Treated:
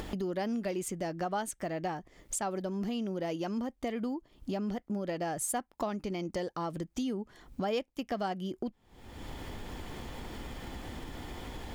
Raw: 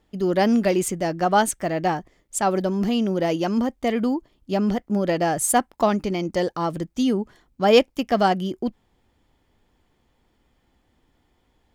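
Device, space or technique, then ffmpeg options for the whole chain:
upward and downward compression: -af "acompressor=mode=upward:threshold=-23dB:ratio=2.5,acompressor=threshold=-39dB:ratio=3,volume=2dB"

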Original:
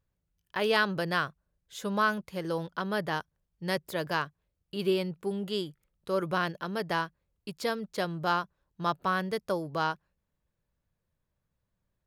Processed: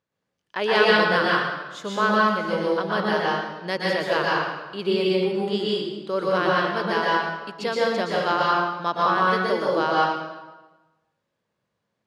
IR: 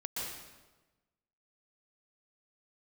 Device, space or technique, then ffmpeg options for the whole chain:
supermarket ceiling speaker: -filter_complex "[0:a]highpass=230,lowpass=5800[link_01];[1:a]atrim=start_sample=2205[link_02];[link_01][link_02]afir=irnorm=-1:irlink=0,volume=7.5dB"

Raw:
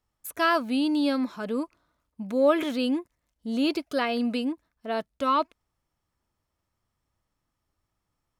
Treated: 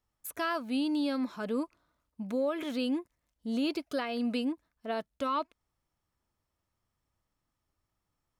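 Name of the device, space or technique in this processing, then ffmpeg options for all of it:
stacked limiters: -af "alimiter=limit=-15.5dB:level=0:latency=1:release=344,alimiter=limit=-20dB:level=0:latency=1:release=264,volume=-3dB"

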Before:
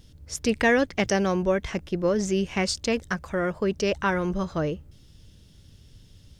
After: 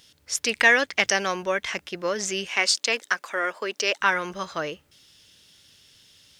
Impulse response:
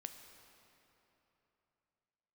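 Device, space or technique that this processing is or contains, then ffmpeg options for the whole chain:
filter by subtraction: -filter_complex "[0:a]asplit=2[link_01][link_02];[link_02]lowpass=2100,volume=-1[link_03];[link_01][link_03]amix=inputs=2:normalize=0,asettb=1/sr,asplit=3[link_04][link_05][link_06];[link_04]atrim=end=2.484[link_07];[link_05]atrim=start=2.48:end=4.01,asetpts=PTS-STARTPTS,afade=type=in:duration=0.004:curve=qsin,afade=type=out:start_time=1.526:duration=0.004:curve=qsin,highpass=frequency=250:width=0.5412,highpass=frequency=250:width=1.3066[link_08];[link_06]atrim=start=4.006[link_09];[link_07][link_08]acrossfade=duration=0.004:curve1=hsin:curve2=qsin[link_10];[link_10][link_09]acrossfade=duration=0.004:curve1=qsin:curve2=hsin,volume=6dB"

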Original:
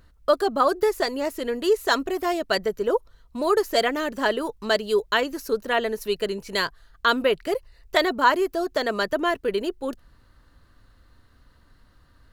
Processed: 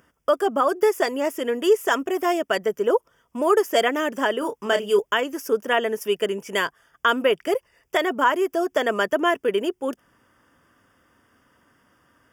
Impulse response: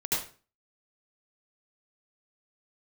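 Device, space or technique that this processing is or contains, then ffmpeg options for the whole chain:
PA system with an anti-feedback notch: -filter_complex "[0:a]highpass=200,asuperstop=centerf=4100:order=8:qfactor=3.3,alimiter=limit=-11.5dB:level=0:latency=1:release=239,asettb=1/sr,asplit=3[link_01][link_02][link_03];[link_01]atrim=end=4.394[link_04];[link_02]atrim=start=4.39:end=4.99,asetpts=PTS-STARTPTS,afade=type=in:duration=0.004:curve=qsin,afade=type=out:start_time=0.596:duration=0.004:curve=qsin,asplit=2[link_05][link_06];[link_06]adelay=30,volume=-7.5dB[link_07];[link_05][link_07]amix=inputs=2:normalize=0,atrim=end_sample=26460[link_08];[link_03]atrim=start=4.986[link_09];[link_04][link_08]acrossfade=duration=0.004:curve1=hsin:curve2=qsin[link_10];[link_10][link_09]acrossfade=duration=0.004:curve1=qsin:curve2=hsin,volume=3dB"

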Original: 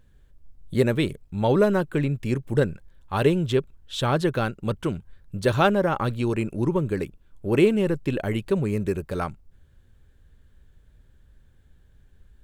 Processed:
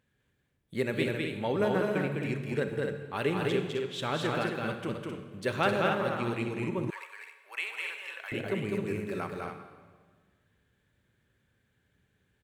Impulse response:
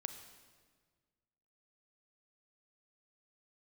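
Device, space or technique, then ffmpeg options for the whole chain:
stadium PA: -filter_complex "[0:a]highpass=140,equalizer=frequency=2200:width_type=o:width=0.95:gain=7.5,aecho=1:1:204.1|262.4:0.708|0.501[link_01];[1:a]atrim=start_sample=2205[link_02];[link_01][link_02]afir=irnorm=-1:irlink=0,asettb=1/sr,asplit=3[link_03][link_04][link_05];[link_03]atrim=end=6.904[link_06];[link_04]atrim=start=6.9:end=8.32,asetpts=PTS-STARTPTS,afade=type=in:duration=0.004:curve=qsin,afade=type=out:start_time=1.416:duration=0.004:curve=qsin,highpass=frequency=910:width=0.5412,highpass=frequency=910:width=1.3066[link_07];[link_05]atrim=start=8.316[link_08];[link_06][link_07]acrossfade=duration=0.004:curve1=hsin:curve2=qsin[link_09];[link_09][link_08]acrossfade=duration=0.004:curve1=qsin:curve2=hsin,volume=-7dB"

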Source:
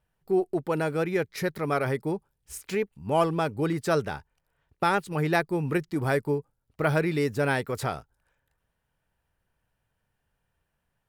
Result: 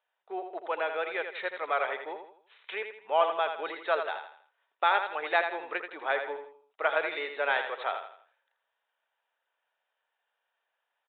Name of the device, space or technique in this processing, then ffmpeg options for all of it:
musical greeting card: -af "aresample=8000,aresample=44100,highpass=frequency=580:width=0.5412,highpass=frequency=580:width=1.3066,equalizer=frequency=3700:width_type=o:width=0.24:gain=6,aecho=1:1:82|164|246|328:0.422|0.16|0.0609|0.0231"

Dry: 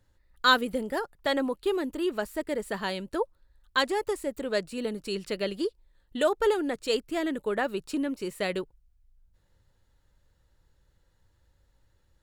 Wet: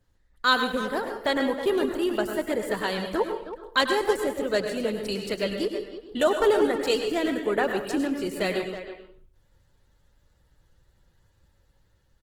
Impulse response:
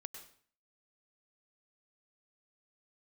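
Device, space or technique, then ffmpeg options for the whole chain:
speakerphone in a meeting room: -filter_complex "[0:a]asettb=1/sr,asplit=3[link_01][link_02][link_03];[link_01]atrim=end=5.064[link_04];[link_02]atrim=start=5.06:end=5.66,asetpts=PTS-STARTPTS,afade=type=in:duration=0.004:curve=qsin,afade=type=out:start_time=0.596:duration=0.004:curve=qsin,adynamicequalizer=threshold=0.0126:dfrequency=370:dqfactor=1.6:tfrequency=370:tqfactor=1.6:attack=5:release=100:ratio=0.375:range=1.5:mode=cutabove:tftype=bell[link_05];[link_03]atrim=start=5.656[link_06];[link_04][link_05]acrossfade=duration=0.004:curve1=hsin:curve2=qsin[link_07];[link_07][link_06]acrossfade=duration=0.004:curve1=qsin:curve2=hsin[link_08];[1:a]atrim=start_sample=2205[link_09];[link_08][link_09]afir=irnorm=-1:irlink=0,asplit=2[link_10][link_11];[link_11]adelay=320,highpass=300,lowpass=3400,asoftclip=type=hard:threshold=-24dB,volume=-11dB[link_12];[link_10][link_12]amix=inputs=2:normalize=0,dynaudnorm=framelen=410:gausssize=5:maxgain=3dB,volume=5dB" -ar 48000 -c:a libopus -b:a 16k

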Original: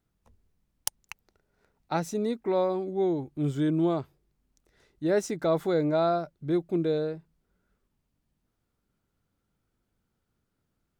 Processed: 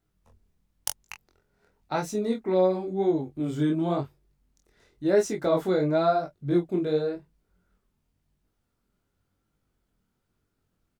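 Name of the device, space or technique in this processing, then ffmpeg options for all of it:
double-tracked vocal: -filter_complex "[0:a]asplit=2[link_01][link_02];[link_02]adelay=22,volume=-7.5dB[link_03];[link_01][link_03]amix=inputs=2:normalize=0,flanger=delay=19:depth=7.9:speed=0.95,volume=4dB"

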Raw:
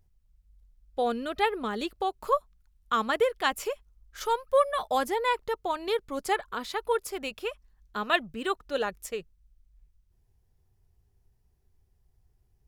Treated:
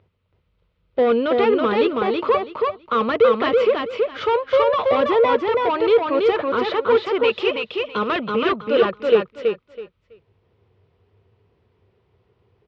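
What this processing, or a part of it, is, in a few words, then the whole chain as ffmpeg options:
overdrive pedal into a guitar cabinet: -filter_complex "[0:a]asettb=1/sr,asplit=3[link_01][link_02][link_03];[link_01]atrim=end=7.244[link_04];[link_02]atrim=start=7.24:end=7.99,asetpts=PTS-STARTPTS,afade=type=in:duration=0.004:curve=qsin,afade=type=out:start_time=0.746:duration=0.004:curve=qsin,highshelf=frequency=2300:width_type=q:width=1.5:gain=6.5[link_05];[link_03]atrim=start=7.986[link_06];[link_04][link_05]acrossfade=duration=0.004:curve1=hsin:curve2=qsin[link_07];[link_07][link_06]acrossfade=duration=0.004:curve1=qsin:curve2=hsin,asplit=2[link_08][link_09];[link_09]highpass=frequency=720:poles=1,volume=28dB,asoftclip=type=tanh:threshold=-9.5dB[link_10];[link_08][link_10]amix=inputs=2:normalize=0,lowpass=frequency=1700:poles=1,volume=-6dB,highpass=91,equalizer=frequency=100:width_type=q:width=4:gain=10,equalizer=frequency=470:width_type=q:width=4:gain=6,equalizer=frequency=780:width_type=q:width=4:gain=-9,equalizer=frequency=1700:width_type=q:width=4:gain=-8,lowpass=frequency=3600:width=0.5412,lowpass=frequency=3600:width=1.3066,aecho=1:1:327|654|981:0.708|0.149|0.0312"

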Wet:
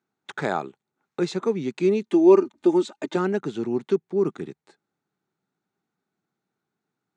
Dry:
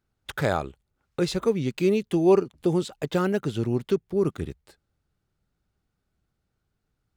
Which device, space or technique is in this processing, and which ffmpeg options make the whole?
television speaker: -filter_complex "[0:a]asettb=1/sr,asplit=3[link_01][link_02][link_03];[link_01]atrim=end=2.024[link_04];[link_02]atrim=start=2.02:end=3.16,asetpts=PTS-STARTPTS,afade=type=in:duration=0.004:curve=qsin,afade=type=out:start_time=1.136:duration=0.004:curve=qsin,aecho=1:1:3.3:0.82,atrim=end_sample=50274[link_05];[link_03]atrim=start=3.156[link_06];[link_04][link_05]acrossfade=duration=0.004:curve1=hsin:curve2=qsin[link_07];[link_07][link_06]acrossfade=duration=0.004:curve1=qsin:curve2=hsin,highpass=frequency=170:width=0.5412,highpass=frequency=170:width=1.3066,equalizer=frequency=380:width_type=q:width=4:gain=3,equalizer=frequency=550:width_type=q:width=4:gain=-6,equalizer=frequency=850:width_type=q:width=4:gain=4,equalizer=frequency=3000:width_type=q:width=4:gain=-6,equalizer=frequency=5000:width_type=q:width=4:gain=-7,lowpass=frequency=7300:width=0.5412,lowpass=frequency=7300:width=1.3066"

